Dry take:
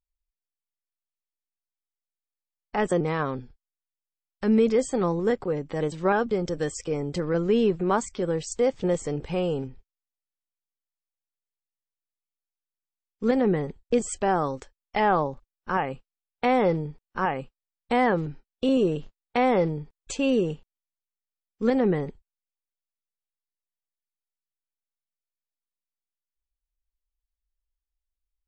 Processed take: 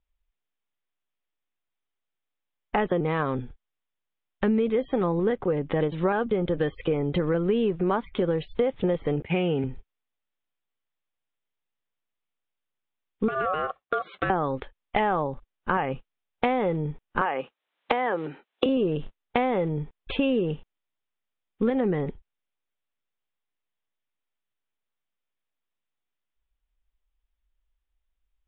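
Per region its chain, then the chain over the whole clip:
9.22–9.64 block floating point 7-bit + expander -33 dBFS + speaker cabinet 110–3500 Hz, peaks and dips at 530 Hz -6 dB, 1100 Hz -8 dB, 2200 Hz +10 dB
13.28–14.3 HPF 150 Hz 24 dB/oct + compressor, threshold -25 dBFS + ring modulator 930 Hz
17.21–18.66 HPF 400 Hz + three-band squash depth 100%
whole clip: steep low-pass 3700 Hz 96 dB/oct; compressor, threshold -30 dBFS; gain +8.5 dB

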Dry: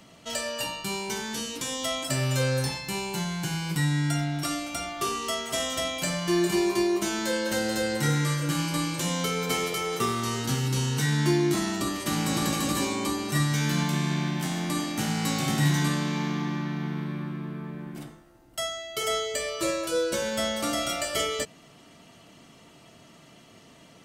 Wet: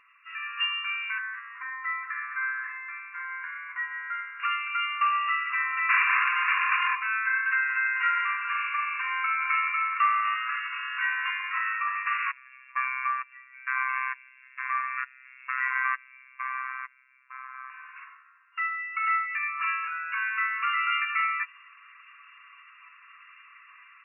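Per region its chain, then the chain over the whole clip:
1.18–4.4 Chebyshev band-pass 240–2000 Hz, order 4 + dynamic EQ 1100 Hz, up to -4 dB, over -46 dBFS, Q 1.4
5.89–6.95 high shelf 5600 Hz +12 dB + Schmitt trigger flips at -31.5 dBFS
12.31–17.7 LFO high-pass square 1.1 Hz 540–5900 Hz + robotiser 130 Hz
whole clip: FFT band-pass 1000–2800 Hz; comb 7.1 ms, depth 37%; AGC gain up to 8.5 dB

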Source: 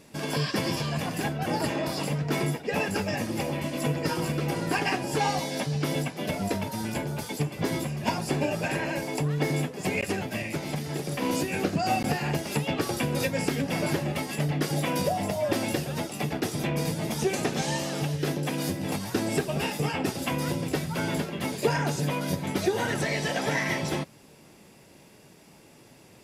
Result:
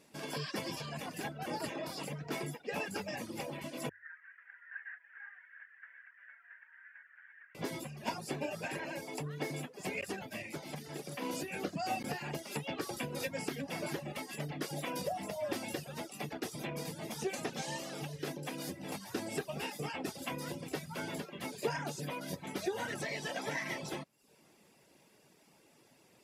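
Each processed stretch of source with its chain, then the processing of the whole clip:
3.89–7.55 delta modulation 16 kbps, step -30 dBFS + Butterworth band-pass 1700 Hz, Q 4.8
whole clip: notches 50/100 Hz; reverb removal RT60 0.57 s; low shelf 140 Hz -10.5 dB; gain -8.5 dB

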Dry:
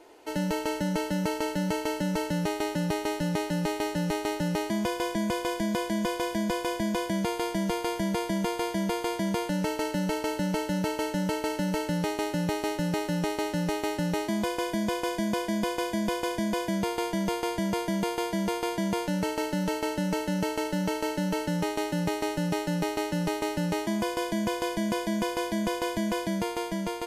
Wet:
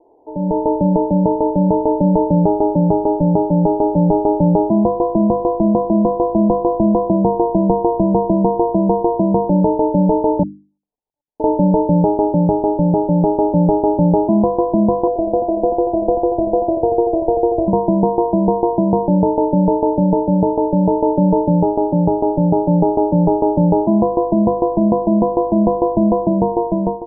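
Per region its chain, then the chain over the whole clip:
10.43–11.4 steep high-pass 2600 Hz 96 dB/oct + negative-ratio compressor -46 dBFS, ratio -0.5
15.07–17.68 bell 740 Hz +3 dB 0.93 oct + fixed phaser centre 470 Hz, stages 4 + lo-fi delay 86 ms, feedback 35%, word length 8-bit, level -6.5 dB
whole clip: steep low-pass 950 Hz 72 dB/oct; notches 50/100/150/200/250/300/350 Hz; AGC gain up to 16 dB; gain +1 dB

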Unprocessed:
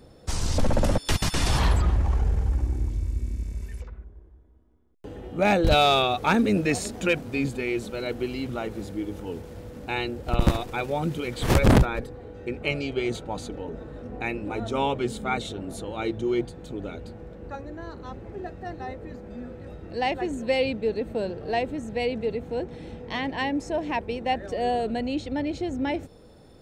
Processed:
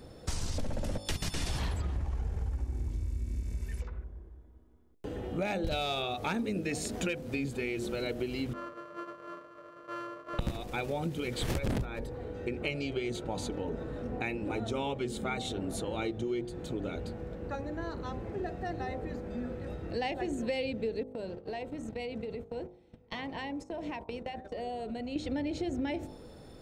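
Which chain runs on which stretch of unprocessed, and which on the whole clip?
8.53–10.39 sample sorter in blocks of 128 samples + double band-pass 820 Hz, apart 1 oct + comb 6.5 ms, depth 70%
21.03–25.16 gate -35 dBFS, range -26 dB + notch 1700 Hz, Q 14 + compressor 12:1, threshold -35 dBFS
whole clip: de-hum 51.26 Hz, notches 24; dynamic EQ 1100 Hz, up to -5 dB, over -41 dBFS, Q 1.3; compressor 6:1, threshold -32 dBFS; gain +1.5 dB

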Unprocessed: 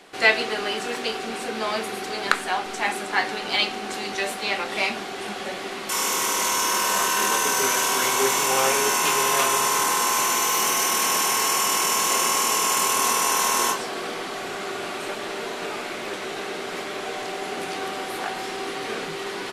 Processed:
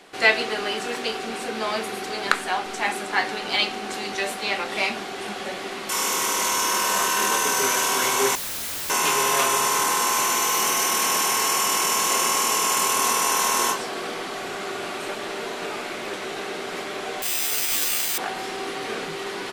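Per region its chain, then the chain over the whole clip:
8.35–8.9 tilt shelf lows +3 dB, about 700 Hz + wrapped overs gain 25.5 dB
17.22–18.18 weighting filter D + careless resampling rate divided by 8×, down none, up zero stuff + resonator 72 Hz, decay 0.33 s, mix 90%
whole clip: dry

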